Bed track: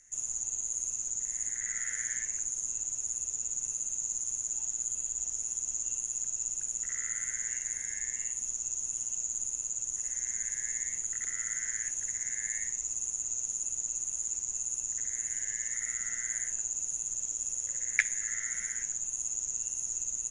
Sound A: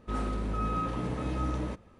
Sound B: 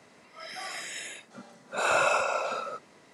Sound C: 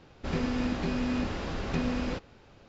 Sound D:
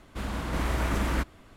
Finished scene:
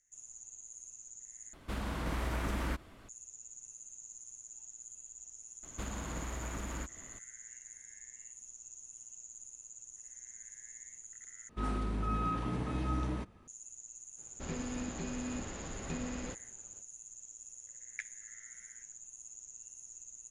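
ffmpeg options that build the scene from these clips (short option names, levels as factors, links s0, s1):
-filter_complex "[4:a]asplit=2[s0][s1];[0:a]volume=0.158[s2];[s0]acompressor=threshold=0.0141:ratio=2:attack=55:release=101:knee=1:detection=peak[s3];[s1]acompressor=threshold=0.0158:ratio=10:attack=50:release=176:knee=1:detection=rms[s4];[1:a]equalizer=f=530:t=o:w=0.35:g=-7.5[s5];[s2]asplit=3[s6][s7][s8];[s6]atrim=end=1.534[s9];[s3]atrim=end=1.56,asetpts=PTS-STARTPTS,volume=0.75[s10];[s7]atrim=start=3.086:end=11.494[s11];[s5]atrim=end=1.99,asetpts=PTS-STARTPTS,volume=0.75[s12];[s8]atrim=start=13.476[s13];[s4]atrim=end=1.56,asetpts=PTS-STARTPTS,volume=0.75,afade=t=in:d=0.004:c=hsin,afade=t=out:st=1.556:d=0.004:c=hsin,adelay=5630[s14];[3:a]atrim=end=2.68,asetpts=PTS-STARTPTS,volume=0.335,afade=t=in:d=0.05,afade=t=out:st=2.63:d=0.05,adelay=14160[s15];[s9][s10]acrossfade=d=0.004:c1=hsin:c2=hsin[s16];[s16][s11]acrossfade=d=0.004:c1=hsin:c2=hsin[s17];[s17][s12]acrossfade=d=0.004:c1=hsin:c2=hsin[s18];[s18][s13]acrossfade=d=0.004:c1=hsin:c2=hsin[s19];[s19][s14][s15]amix=inputs=3:normalize=0"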